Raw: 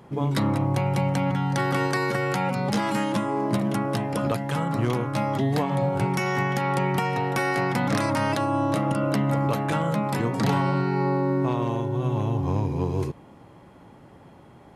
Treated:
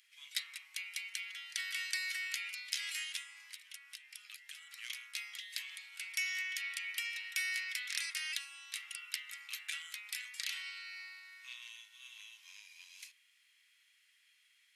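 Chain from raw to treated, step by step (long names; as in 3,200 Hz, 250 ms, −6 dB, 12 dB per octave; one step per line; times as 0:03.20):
Butterworth high-pass 2,100 Hz 36 dB per octave
0:03.22–0:04.78: downward compressor 4 to 1, threshold −46 dBFS, peak gain reduction 12 dB
level −2 dB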